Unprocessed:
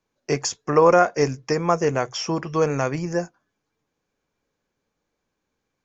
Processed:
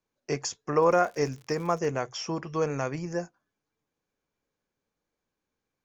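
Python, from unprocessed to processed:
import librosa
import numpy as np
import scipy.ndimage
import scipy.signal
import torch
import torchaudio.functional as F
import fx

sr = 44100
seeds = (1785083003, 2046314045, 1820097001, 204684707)

y = fx.dmg_crackle(x, sr, seeds[0], per_s=92.0, level_db=-31.0, at=(0.8, 1.88), fade=0.02)
y = F.gain(torch.from_numpy(y), -7.0).numpy()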